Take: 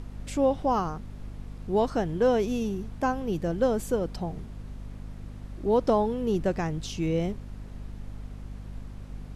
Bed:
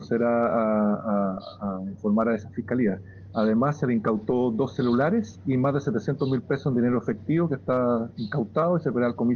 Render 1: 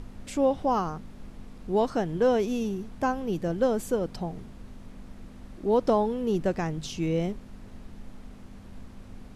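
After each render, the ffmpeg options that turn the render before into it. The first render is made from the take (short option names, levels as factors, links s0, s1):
-af "bandreject=f=50:t=h:w=4,bandreject=f=100:t=h:w=4,bandreject=f=150:t=h:w=4"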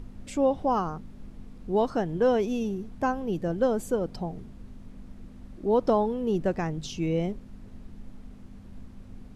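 -af "afftdn=nr=6:nf=-46"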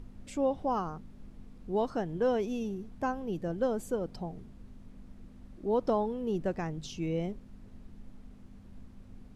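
-af "volume=0.531"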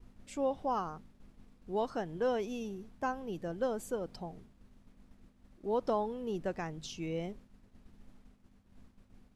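-af "agate=range=0.0224:threshold=0.00708:ratio=3:detection=peak,lowshelf=f=490:g=-7"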